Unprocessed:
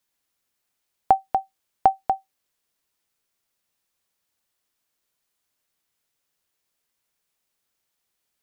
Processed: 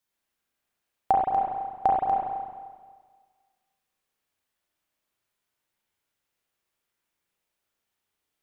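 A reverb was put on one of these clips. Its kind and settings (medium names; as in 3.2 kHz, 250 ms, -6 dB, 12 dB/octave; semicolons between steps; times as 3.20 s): spring tank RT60 1.6 s, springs 33/43 ms, chirp 65 ms, DRR -4 dB; trim -6 dB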